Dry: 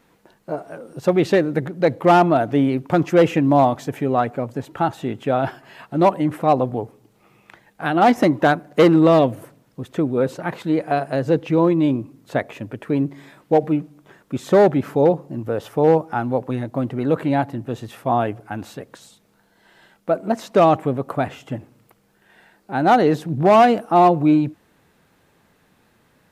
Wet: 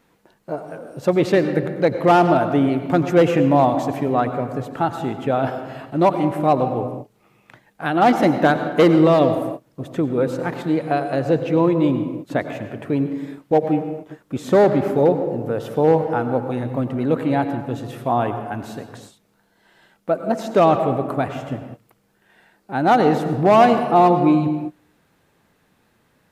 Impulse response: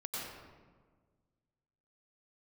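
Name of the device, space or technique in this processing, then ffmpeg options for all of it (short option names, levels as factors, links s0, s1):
keyed gated reverb: -filter_complex "[0:a]asplit=3[s0][s1][s2];[1:a]atrim=start_sample=2205[s3];[s1][s3]afir=irnorm=-1:irlink=0[s4];[s2]apad=whole_len=1160485[s5];[s4][s5]sidechaingate=range=0.0224:threshold=0.00501:ratio=16:detection=peak,volume=0.447[s6];[s0][s6]amix=inputs=2:normalize=0,volume=0.75"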